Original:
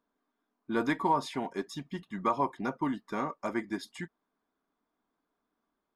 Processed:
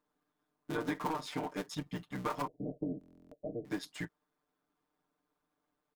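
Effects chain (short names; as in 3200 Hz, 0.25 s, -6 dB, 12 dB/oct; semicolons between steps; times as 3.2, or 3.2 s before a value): cycle switcher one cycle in 3, muted; notch 380 Hz, Q 12; compressor 6:1, threshold -32 dBFS, peak gain reduction 9.5 dB; 2.47–3.65 Chebyshev low-pass 670 Hz, order 6; comb 6.7 ms, depth 85%; stuck buffer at 2.99, samples 1024, times 13; gain -1.5 dB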